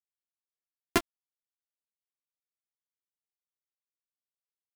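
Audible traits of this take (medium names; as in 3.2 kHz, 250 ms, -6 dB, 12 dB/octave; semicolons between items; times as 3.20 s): a buzz of ramps at a fixed pitch in blocks of 128 samples; tremolo saw up 3.6 Hz, depth 35%; a quantiser's noise floor 6-bit, dither none; a shimmering, thickened sound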